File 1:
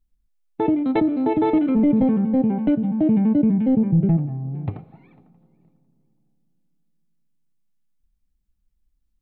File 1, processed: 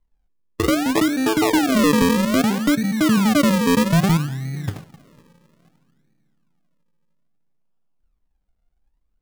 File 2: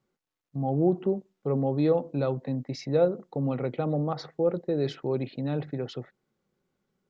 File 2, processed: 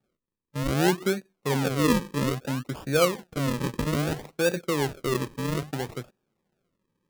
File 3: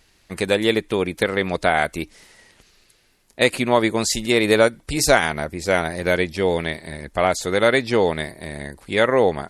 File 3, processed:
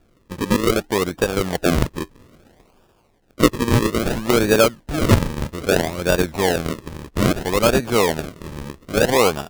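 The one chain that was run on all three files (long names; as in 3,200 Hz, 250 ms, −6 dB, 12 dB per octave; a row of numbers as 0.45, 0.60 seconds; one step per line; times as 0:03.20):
sample-and-hold swept by an LFO 42×, swing 100% 0.61 Hz
level +1 dB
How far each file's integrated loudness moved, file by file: +1.5, +1.5, +0.5 LU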